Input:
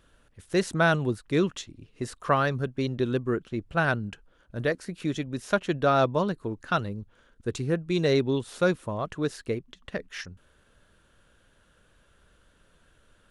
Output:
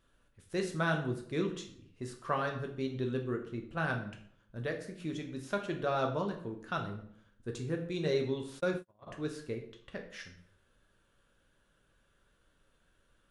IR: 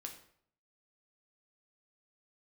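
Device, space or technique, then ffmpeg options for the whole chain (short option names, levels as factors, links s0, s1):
bathroom: -filter_complex "[1:a]atrim=start_sample=2205[s0];[0:a][s0]afir=irnorm=-1:irlink=0,asplit=3[s1][s2][s3];[s1]afade=t=out:st=8.59:d=0.02[s4];[s2]agate=range=0.00708:threshold=0.0316:ratio=16:detection=peak,afade=t=in:st=8.59:d=0.02,afade=t=out:st=9.06:d=0.02[s5];[s3]afade=t=in:st=9.06:d=0.02[s6];[s4][s5][s6]amix=inputs=3:normalize=0,volume=0.562"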